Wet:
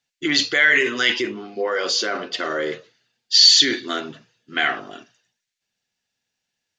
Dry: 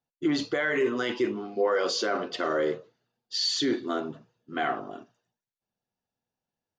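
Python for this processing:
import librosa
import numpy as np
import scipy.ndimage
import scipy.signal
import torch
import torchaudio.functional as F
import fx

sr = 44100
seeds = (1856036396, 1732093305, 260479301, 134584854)

y = fx.band_shelf(x, sr, hz=3500.0, db=fx.steps((0.0, 15.5), (1.2, 8.0), (2.71, 15.0)), octaves=2.6)
y = y * librosa.db_to_amplitude(1.0)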